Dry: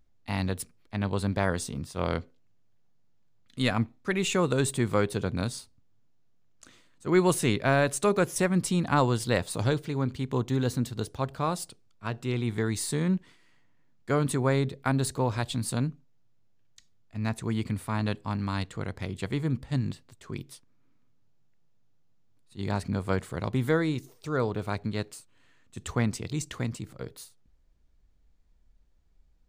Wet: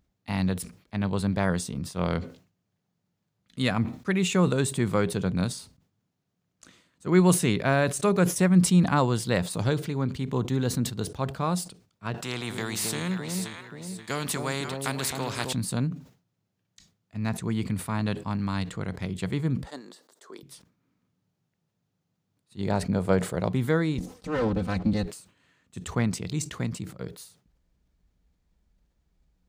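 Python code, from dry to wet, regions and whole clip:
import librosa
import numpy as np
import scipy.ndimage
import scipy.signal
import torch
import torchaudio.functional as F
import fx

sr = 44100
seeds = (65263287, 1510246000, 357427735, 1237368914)

y = fx.chain(x, sr, fx.highpass(hz=100.0, slope=12),
    fx.echo_alternate(ms=265, hz=800.0, feedback_pct=50, wet_db=-5),
    fx.spectral_comp(ratio=2.0), at=(12.14, 15.53))
y = fx.chain(y, sr, fx.highpass(hz=370.0, slope=24),
    fx.peak_eq(hz=2500.0, db=-12.5, octaves=0.58), at=(19.65, 20.43))
y = fx.chain(y, sr, fx.peak_eq(hz=550.0, db=7.5, octaves=1.2),
    fx.notch(hz=1100.0, q=16.0), at=(22.61, 23.48))
y = fx.chain(y, sr, fx.lower_of_two(delay_ms=3.9),
    fx.bessel_lowpass(hz=9500.0, order=2),
    fx.low_shelf(hz=270.0, db=11.5), at=(23.98, 25.05))
y = scipy.signal.sosfilt(scipy.signal.butter(2, 42.0, 'highpass', fs=sr, output='sos'), y)
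y = fx.peak_eq(y, sr, hz=180.0, db=8.5, octaves=0.25)
y = fx.sustainer(y, sr, db_per_s=140.0)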